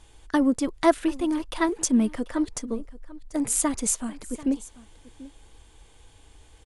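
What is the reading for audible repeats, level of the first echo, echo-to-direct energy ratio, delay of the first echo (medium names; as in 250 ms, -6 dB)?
1, -19.0 dB, -19.0 dB, 739 ms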